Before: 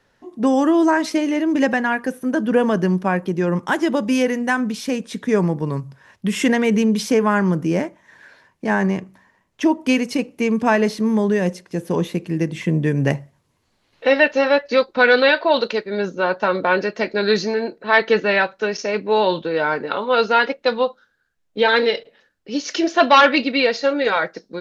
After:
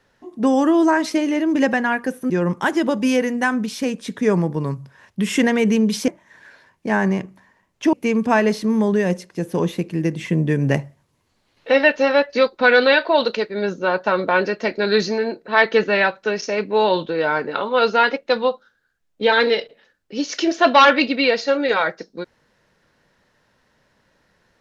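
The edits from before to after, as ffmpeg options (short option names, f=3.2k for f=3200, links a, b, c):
-filter_complex "[0:a]asplit=4[a][b][c][d];[a]atrim=end=2.302[e];[b]atrim=start=3.358:end=7.142[f];[c]atrim=start=7.858:end=9.712[g];[d]atrim=start=10.288[h];[e][f]acrossfade=d=0.004:c1=hsin:c2=hsin[i];[i][g]acrossfade=d=0.004:c1=hsin:c2=hsin[j];[j][h]acrossfade=d=0.004:c1=hsin:c2=hsin"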